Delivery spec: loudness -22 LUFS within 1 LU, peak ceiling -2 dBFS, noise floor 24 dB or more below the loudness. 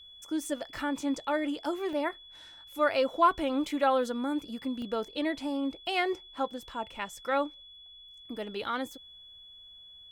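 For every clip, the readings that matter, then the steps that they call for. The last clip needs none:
dropouts 2; longest dropout 1.1 ms; steady tone 3400 Hz; tone level -49 dBFS; loudness -31.5 LUFS; peak -12.0 dBFS; loudness target -22.0 LUFS
-> interpolate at 1.93/4.82, 1.1 ms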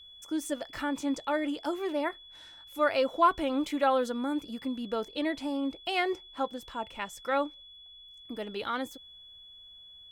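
dropouts 0; steady tone 3400 Hz; tone level -49 dBFS
-> notch 3400 Hz, Q 30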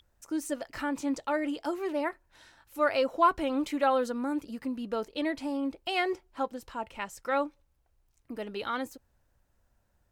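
steady tone none; loudness -31.5 LUFS; peak -12.0 dBFS; loudness target -22.0 LUFS
-> gain +9.5 dB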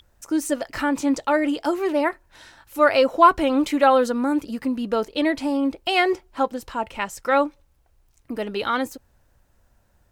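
loudness -22.0 LUFS; peak -2.5 dBFS; noise floor -62 dBFS

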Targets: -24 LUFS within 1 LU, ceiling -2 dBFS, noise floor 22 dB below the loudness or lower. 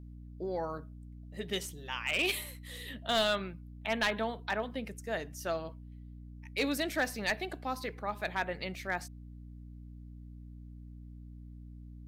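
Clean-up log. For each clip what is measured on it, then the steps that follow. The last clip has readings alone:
clipped 0.3%; flat tops at -23.0 dBFS; hum 60 Hz; harmonics up to 300 Hz; hum level -45 dBFS; loudness -34.5 LUFS; peak -23.0 dBFS; loudness target -24.0 LUFS
-> clip repair -23 dBFS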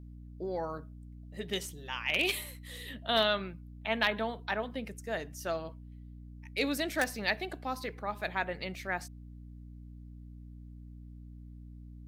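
clipped 0.0%; hum 60 Hz; harmonics up to 300 Hz; hum level -45 dBFS
-> notches 60/120/180/240/300 Hz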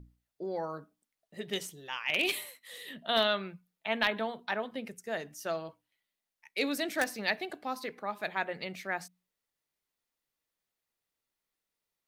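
hum none; loudness -34.0 LUFS; peak -14.0 dBFS; loudness target -24.0 LUFS
-> gain +10 dB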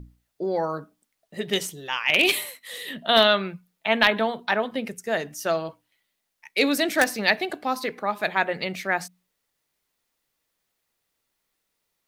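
loudness -24.0 LUFS; peak -4.0 dBFS; noise floor -78 dBFS

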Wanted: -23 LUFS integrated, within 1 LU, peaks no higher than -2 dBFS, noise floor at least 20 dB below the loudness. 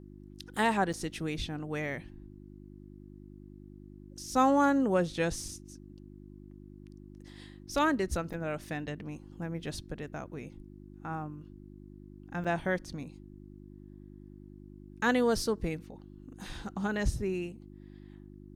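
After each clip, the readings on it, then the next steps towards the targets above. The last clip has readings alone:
dropouts 3; longest dropout 6.3 ms; hum 50 Hz; harmonics up to 350 Hz; hum level -47 dBFS; loudness -32.0 LUFS; peak -14.5 dBFS; loudness target -23.0 LUFS
-> interpolate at 0.93/8.33/12.44, 6.3 ms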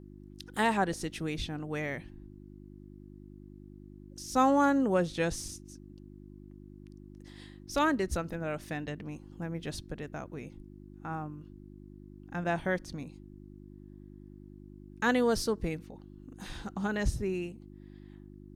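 dropouts 0; hum 50 Hz; harmonics up to 350 Hz; hum level -47 dBFS
-> de-hum 50 Hz, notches 7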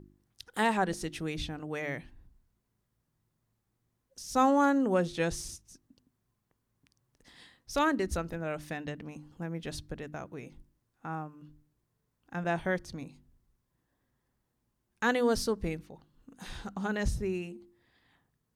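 hum none; loudness -32.0 LUFS; peak -14.5 dBFS; loudness target -23.0 LUFS
-> gain +9 dB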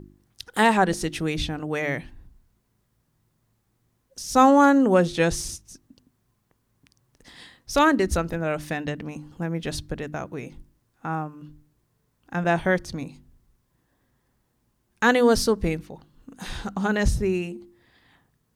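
loudness -23.5 LUFS; peak -5.5 dBFS; noise floor -71 dBFS

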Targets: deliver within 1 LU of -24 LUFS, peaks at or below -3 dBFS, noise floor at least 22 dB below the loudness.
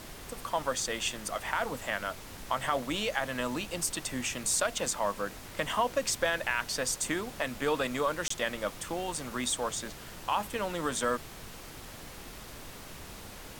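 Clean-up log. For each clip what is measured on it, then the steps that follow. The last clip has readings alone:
dropouts 1; longest dropout 24 ms; noise floor -46 dBFS; noise floor target -54 dBFS; loudness -32.0 LUFS; peak -14.0 dBFS; loudness target -24.0 LUFS
-> interpolate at 8.28, 24 ms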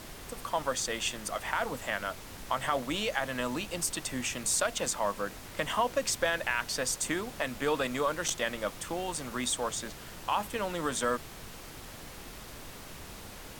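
dropouts 0; noise floor -46 dBFS; noise floor target -54 dBFS
-> noise print and reduce 8 dB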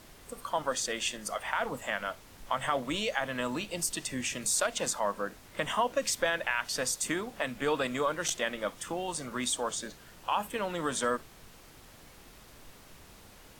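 noise floor -54 dBFS; loudness -32.0 LUFS; peak -14.0 dBFS; loudness target -24.0 LUFS
-> gain +8 dB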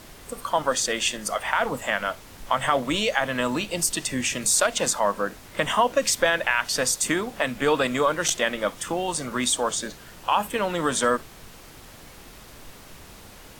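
loudness -24.0 LUFS; peak -6.0 dBFS; noise floor -46 dBFS

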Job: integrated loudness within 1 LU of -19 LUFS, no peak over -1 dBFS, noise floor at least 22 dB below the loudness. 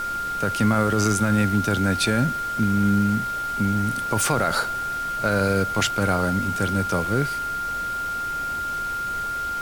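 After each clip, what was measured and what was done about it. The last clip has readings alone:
steady tone 1400 Hz; tone level -25 dBFS; noise floor -28 dBFS; noise floor target -45 dBFS; loudness -23.0 LUFS; peak -9.0 dBFS; loudness target -19.0 LUFS
-> notch 1400 Hz, Q 30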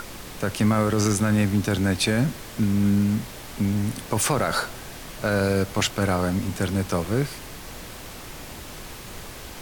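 steady tone none; noise floor -39 dBFS; noise floor target -46 dBFS
-> noise print and reduce 7 dB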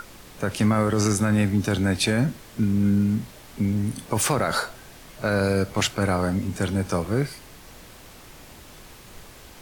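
noise floor -46 dBFS; loudness -24.0 LUFS; peak -11.0 dBFS; loudness target -19.0 LUFS
-> gain +5 dB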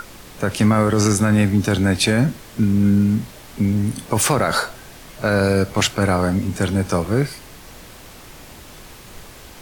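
loudness -19.0 LUFS; peak -6.0 dBFS; noise floor -41 dBFS

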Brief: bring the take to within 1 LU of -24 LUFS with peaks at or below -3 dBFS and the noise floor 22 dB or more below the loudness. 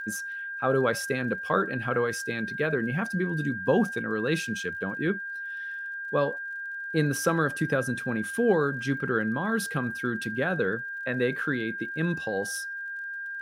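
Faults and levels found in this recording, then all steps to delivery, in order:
ticks 39/s; steady tone 1600 Hz; tone level -33 dBFS; loudness -28.5 LUFS; peak -9.5 dBFS; loudness target -24.0 LUFS
-> de-click; notch 1600 Hz, Q 30; gain +4.5 dB

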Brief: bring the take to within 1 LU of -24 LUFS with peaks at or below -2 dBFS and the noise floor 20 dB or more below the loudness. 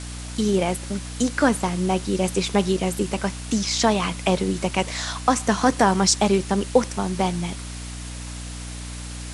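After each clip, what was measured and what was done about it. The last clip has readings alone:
hum 60 Hz; harmonics up to 300 Hz; hum level -32 dBFS; noise floor -34 dBFS; noise floor target -43 dBFS; loudness -22.5 LUFS; peak -3.5 dBFS; loudness target -24.0 LUFS
-> notches 60/120/180/240/300 Hz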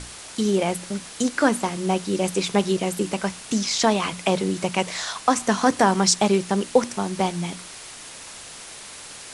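hum none; noise floor -40 dBFS; noise floor target -43 dBFS
-> denoiser 6 dB, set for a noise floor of -40 dBFS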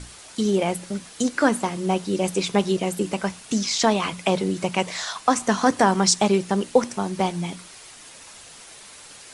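noise floor -45 dBFS; loudness -23.0 LUFS; peak -4.0 dBFS; loudness target -24.0 LUFS
-> gain -1 dB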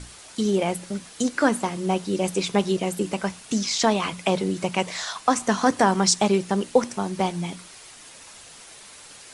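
loudness -24.0 LUFS; peak -5.0 dBFS; noise floor -46 dBFS

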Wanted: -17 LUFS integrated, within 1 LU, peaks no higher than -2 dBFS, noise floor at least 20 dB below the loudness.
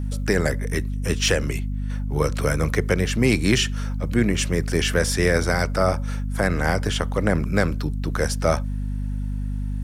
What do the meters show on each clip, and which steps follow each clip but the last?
hum 50 Hz; harmonics up to 250 Hz; hum level -24 dBFS; loudness -23.0 LUFS; peak -6.0 dBFS; loudness target -17.0 LUFS
-> de-hum 50 Hz, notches 5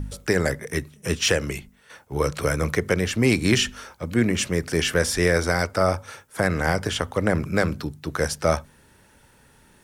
hum none; loudness -23.5 LUFS; peak -7.0 dBFS; loudness target -17.0 LUFS
-> gain +6.5 dB; limiter -2 dBFS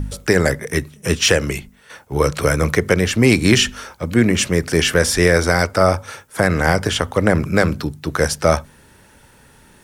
loudness -17.5 LUFS; peak -2.0 dBFS; noise floor -50 dBFS

